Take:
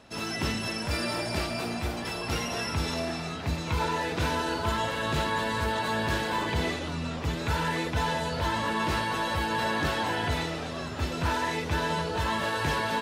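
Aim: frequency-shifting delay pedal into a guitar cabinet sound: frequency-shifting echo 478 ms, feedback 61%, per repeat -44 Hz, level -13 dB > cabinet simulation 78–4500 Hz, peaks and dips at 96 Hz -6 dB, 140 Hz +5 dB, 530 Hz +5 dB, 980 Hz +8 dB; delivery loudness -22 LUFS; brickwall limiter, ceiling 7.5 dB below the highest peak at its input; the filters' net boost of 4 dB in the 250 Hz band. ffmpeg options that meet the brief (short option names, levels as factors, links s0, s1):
-filter_complex "[0:a]equalizer=f=250:t=o:g=4.5,alimiter=limit=0.0794:level=0:latency=1,asplit=8[s0][s1][s2][s3][s4][s5][s6][s7];[s1]adelay=478,afreqshift=-44,volume=0.224[s8];[s2]adelay=956,afreqshift=-88,volume=0.136[s9];[s3]adelay=1434,afreqshift=-132,volume=0.0832[s10];[s4]adelay=1912,afreqshift=-176,volume=0.0507[s11];[s5]adelay=2390,afreqshift=-220,volume=0.0309[s12];[s6]adelay=2868,afreqshift=-264,volume=0.0188[s13];[s7]adelay=3346,afreqshift=-308,volume=0.0115[s14];[s0][s8][s9][s10][s11][s12][s13][s14]amix=inputs=8:normalize=0,highpass=78,equalizer=f=96:t=q:w=4:g=-6,equalizer=f=140:t=q:w=4:g=5,equalizer=f=530:t=q:w=4:g=5,equalizer=f=980:t=q:w=4:g=8,lowpass=f=4500:w=0.5412,lowpass=f=4500:w=1.3066,volume=2.11"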